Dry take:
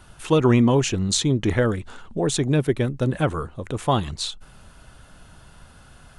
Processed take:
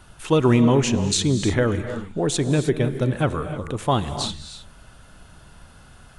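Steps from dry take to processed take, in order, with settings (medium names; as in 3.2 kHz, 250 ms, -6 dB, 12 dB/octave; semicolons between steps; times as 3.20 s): gated-style reverb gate 340 ms rising, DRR 9 dB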